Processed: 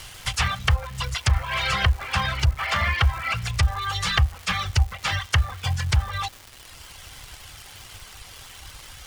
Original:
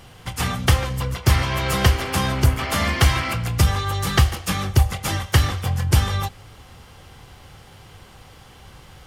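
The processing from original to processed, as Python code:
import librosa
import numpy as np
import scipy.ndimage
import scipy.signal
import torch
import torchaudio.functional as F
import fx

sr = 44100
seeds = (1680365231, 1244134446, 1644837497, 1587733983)

p1 = fx.cvsd(x, sr, bps=64000)
p2 = fx.dereverb_blind(p1, sr, rt60_s=1.2)
p3 = fx.tone_stack(p2, sr, knobs='10-0-10')
p4 = fx.env_lowpass_down(p3, sr, base_hz=860.0, full_db=-23.5)
p5 = fx.over_compress(p4, sr, threshold_db=-29.0, ratio=-1.0)
p6 = p4 + (p5 * librosa.db_to_amplitude(-2.0))
p7 = fx.dmg_crackle(p6, sr, seeds[0], per_s=480.0, level_db=-37.0)
y = p7 * librosa.db_to_amplitude(4.5)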